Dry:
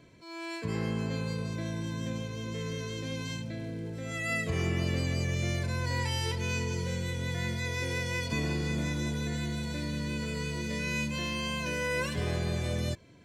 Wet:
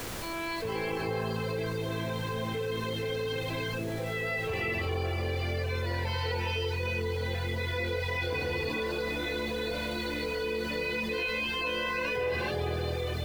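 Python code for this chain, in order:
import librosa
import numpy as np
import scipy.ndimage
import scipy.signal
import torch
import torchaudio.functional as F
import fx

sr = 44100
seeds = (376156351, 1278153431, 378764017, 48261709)

y = scipy.signal.sosfilt(scipy.signal.butter(2, 62.0, 'highpass', fs=sr, output='sos'), x)
y = fx.peak_eq(y, sr, hz=180.0, db=-11.0, octaves=1.6)
y = fx.rev_gated(y, sr, seeds[0], gate_ms=470, shape='rising', drr_db=-3.5)
y = fx.dereverb_blind(y, sr, rt60_s=0.61)
y = scipy.signal.sosfilt(scipy.signal.butter(6, 4600.0, 'lowpass', fs=sr, output='sos'), y)
y = fx.small_body(y, sr, hz=(450.0, 780.0), ring_ms=25, db=10)
y = fx.dmg_noise_colour(y, sr, seeds[1], colour='pink', level_db=-50.0)
y = fx.env_flatten(y, sr, amount_pct=70)
y = F.gain(torch.from_numpy(y), -7.5).numpy()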